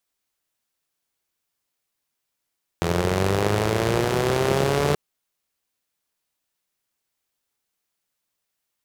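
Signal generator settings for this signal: four-cylinder engine model, changing speed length 2.13 s, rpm 2500, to 4400, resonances 100/160/380 Hz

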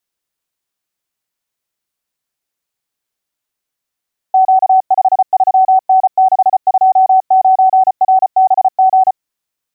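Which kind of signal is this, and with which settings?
Morse "Q53N629RBG" 34 wpm 756 Hz -5 dBFS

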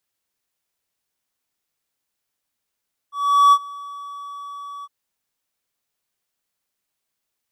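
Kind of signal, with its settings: ADSR triangle 1140 Hz, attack 0.403 s, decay 57 ms, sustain -23.5 dB, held 1.72 s, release 38 ms -6 dBFS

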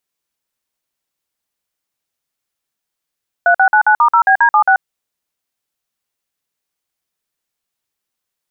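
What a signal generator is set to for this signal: DTMF "3699*0BD76", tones 85 ms, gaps 50 ms, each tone -9.5 dBFS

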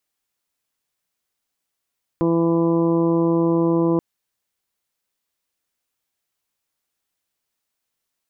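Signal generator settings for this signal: steady additive tone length 1.78 s, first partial 167 Hz, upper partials 5/-2/-11/-15/-7.5/-19 dB, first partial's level -22 dB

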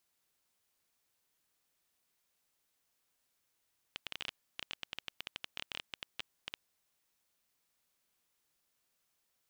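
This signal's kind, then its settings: random clicks 13/s -21.5 dBFS 2.61 s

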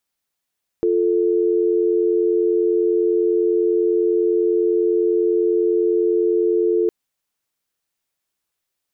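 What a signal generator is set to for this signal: call progress tone dial tone, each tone -17.5 dBFS 6.06 s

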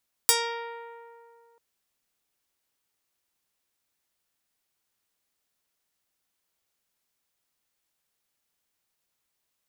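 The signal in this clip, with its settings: plucked string A#4, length 1.29 s, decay 2.43 s, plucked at 0.22, medium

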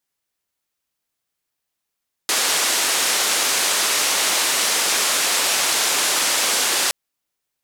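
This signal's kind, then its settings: noise band 360–9200 Hz, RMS -19.5 dBFS 4.62 s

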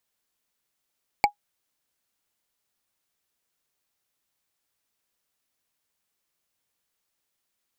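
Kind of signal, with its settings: wood hit, lowest mode 824 Hz, decay 0.10 s, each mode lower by 4 dB, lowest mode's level -10 dB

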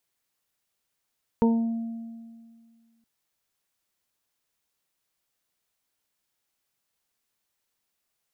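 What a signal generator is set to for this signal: additive tone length 1.62 s, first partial 229 Hz, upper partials -3/-19.5/-8.5 dB, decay 2.00 s, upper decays 0.40/1.68/0.41 s, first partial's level -17 dB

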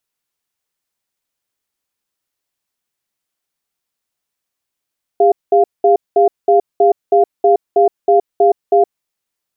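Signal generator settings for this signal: cadence 403 Hz, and 697 Hz, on 0.12 s, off 0.20 s, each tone -9.5 dBFS 3.79 s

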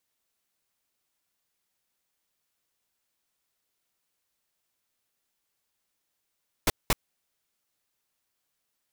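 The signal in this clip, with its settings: noise bursts pink, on 0.03 s, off 0.20 s, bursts 2, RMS -22 dBFS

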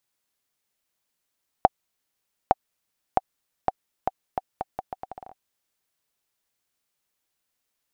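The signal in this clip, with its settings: bouncing ball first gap 0.86 s, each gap 0.77, 760 Hz, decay 30 ms -1.5 dBFS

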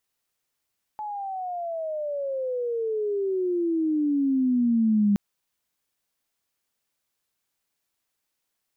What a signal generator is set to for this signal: chirp logarithmic 860 Hz -> 200 Hz -30 dBFS -> -17 dBFS 4.17 s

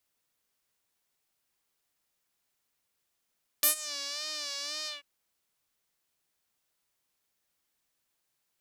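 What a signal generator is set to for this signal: synth patch with vibrato D5, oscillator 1 saw, oscillator 2 triangle, interval -12 st, oscillator 2 level -9 dB, filter bandpass, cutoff 2500 Hz, filter envelope 2.5 oct, attack 7.7 ms, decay 0.11 s, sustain -23.5 dB, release 0.15 s, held 1.24 s, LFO 1.9 Hz, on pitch 78 cents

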